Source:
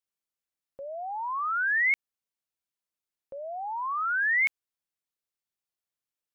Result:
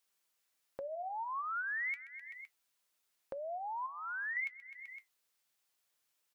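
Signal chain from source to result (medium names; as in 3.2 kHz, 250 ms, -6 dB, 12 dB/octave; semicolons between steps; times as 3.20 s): 3.86–4.37 s: high-order bell 1.6 kHz -13 dB 2.8 oct; feedback delay 128 ms, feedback 55%, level -21 dB; flange 0.46 Hz, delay 4.1 ms, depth 7.9 ms, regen +67%; compression 6:1, threshold -54 dBFS, peak gain reduction 25.5 dB; bass shelf 380 Hz -10.5 dB; trim +15.5 dB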